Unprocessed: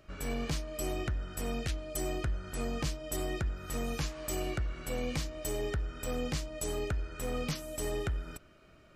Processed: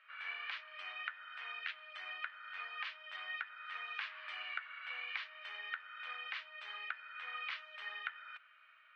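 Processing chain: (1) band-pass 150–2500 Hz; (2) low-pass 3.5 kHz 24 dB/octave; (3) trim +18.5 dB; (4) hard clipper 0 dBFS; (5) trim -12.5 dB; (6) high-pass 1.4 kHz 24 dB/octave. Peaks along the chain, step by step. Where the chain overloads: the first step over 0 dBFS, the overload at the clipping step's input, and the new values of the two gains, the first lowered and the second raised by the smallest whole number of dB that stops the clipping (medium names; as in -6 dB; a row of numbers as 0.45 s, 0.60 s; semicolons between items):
-23.0 dBFS, -23.0 dBFS, -4.5 dBFS, -4.5 dBFS, -17.0 dBFS, -21.5 dBFS; nothing clips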